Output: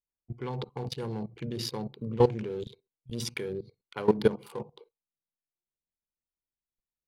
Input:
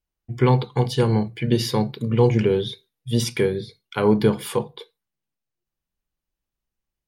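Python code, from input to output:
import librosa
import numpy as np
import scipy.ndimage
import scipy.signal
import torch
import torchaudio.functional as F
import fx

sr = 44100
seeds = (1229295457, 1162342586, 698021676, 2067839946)

y = fx.wiener(x, sr, points=25)
y = fx.low_shelf(y, sr, hz=220.0, db=-7.5)
y = fx.level_steps(y, sr, step_db=17)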